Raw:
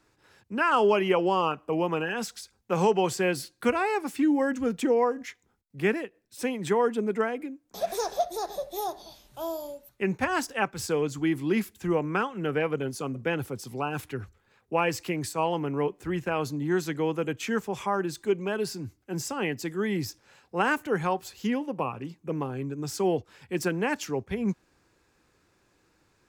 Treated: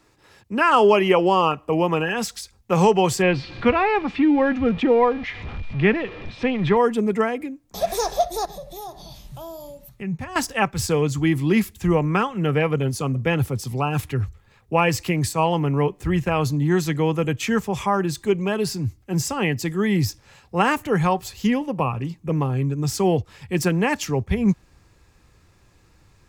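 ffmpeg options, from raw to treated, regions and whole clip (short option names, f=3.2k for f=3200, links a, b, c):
-filter_complex "[0:a]asettb=1/sr,asplit=3[a][b][c];[a]atrim=end=3.224[d];[b]atrim=start=3.22:end=6.77,asetpts=PTS-STARTPTS,afade=t=in:d=0.004:c=qsin,afade=t=out:st=3.546:d=0.004:c=qsin,aeval=exprs='val(0)+0.5*0.0126*sgn(val(0))':c=same,lowpass=f=3.6k:w=0.5412,lowpass=f=3.6k:w=1.3066,aeval=exprs='val(0)+0.00224*sin(2*PI*2400*n/s)':c=same[e];[c]atrim=start=6.766[f];[d][e]acrossfade=d=0.004:c1=hsin:c2=qsin[g];[g][f]acrossfade=d=0.004:c1=qsin:c2=hsin,asettb=1/sr,asplit=3[h][i][j];[h]atrim=end=8.454[k];[i]atrim=start=8.45:end=10.36,asetpts=PTS-STARTPTS,afade=t=in:d=0.004:c=qsin,afade=t=out:st=1.906:d=0.004:c=qsin,equalizer=f=160:t=o:w=0.52:g=14.5,acompressor=threshold=-47dB:ratio=2:attack=3.2:release=140:knee=1:detection=peak[l];[j]atrim=start=10.356[m];[k][l]acrossfade=d=0.004:c1=hsin:c2=qsin[n];[n][m]acrossfade=d=0.004:c1=qsin:c2=hsin,bandreject=f=1.5k:w=9,asubboost=boost=4:cutoff=140,volume=7.5dB"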